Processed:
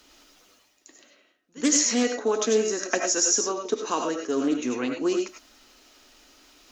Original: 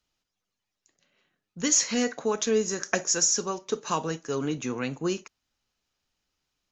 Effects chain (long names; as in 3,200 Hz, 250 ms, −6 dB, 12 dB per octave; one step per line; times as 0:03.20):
low shelf with overshoot 210 Hz −8.5 dB, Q 3
reversed playback
upward compression, threshold −37 dBFS
reversed playback
echo ahead of the sound 77 ms −20 dB
on a send at −3 dB: convolution reverb, pre-delay 55 ms
on the sum: highs frequency-modulated by the lows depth 0.11 ms